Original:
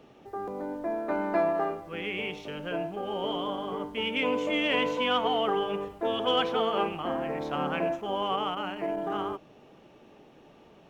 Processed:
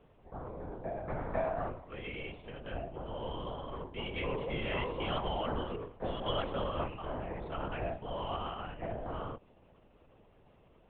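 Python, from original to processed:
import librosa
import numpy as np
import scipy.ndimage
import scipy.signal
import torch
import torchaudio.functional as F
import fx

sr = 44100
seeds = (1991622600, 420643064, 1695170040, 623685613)

y = scipy.signal.medfilt(x, 9)
y = fx.lpc_vocoder(y, sr, seeds[0], excitation='whisper', order=10)
y = y * 10.0 ** (-7.5 / 20.0)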